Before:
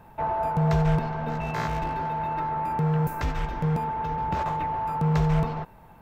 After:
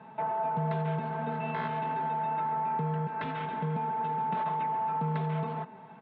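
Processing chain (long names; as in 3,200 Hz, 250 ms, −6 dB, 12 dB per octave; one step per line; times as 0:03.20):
Chebyshev band-pass filter 120–3,600 Hz, order 4
comb filter 4.6 ms
downward compressor 2 to 1, threshold −35 dBFS, peak gain reduction 9.5 dB
on a send: convolution reverb RT60 0.30 s, pre-delay 136 ms, DRR 16 dB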